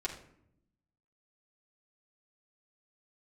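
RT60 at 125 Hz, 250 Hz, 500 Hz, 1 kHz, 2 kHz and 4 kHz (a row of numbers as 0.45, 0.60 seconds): 1.3, 1.2, 0.80, 0.65, 0.55, 0.40 seconds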